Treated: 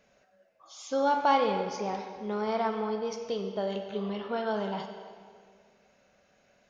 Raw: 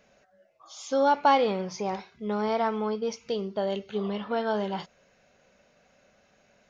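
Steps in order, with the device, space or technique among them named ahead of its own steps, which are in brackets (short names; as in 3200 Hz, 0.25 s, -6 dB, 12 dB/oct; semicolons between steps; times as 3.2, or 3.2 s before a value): filtered reverb send (on a send: HPF 250 Hz + LPF 6600 Hz + reverb RT60 1.9 s, pre-delay 28 ms, DRR 5.5 dB); on the sum: gain -3.5 dB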